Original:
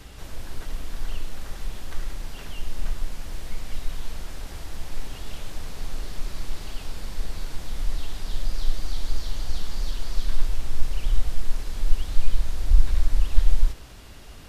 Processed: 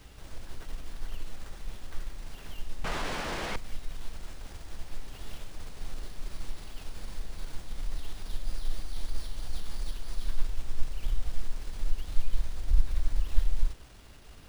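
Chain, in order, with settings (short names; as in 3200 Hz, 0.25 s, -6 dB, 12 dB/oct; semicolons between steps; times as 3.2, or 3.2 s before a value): half-wave gain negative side -3 dB; careless resampling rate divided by 3×, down none, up hold; 2.84–3.56 overdrive pedal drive 36 dB, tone 1400 Hz, clips at -15 dBFS; gain -6 dB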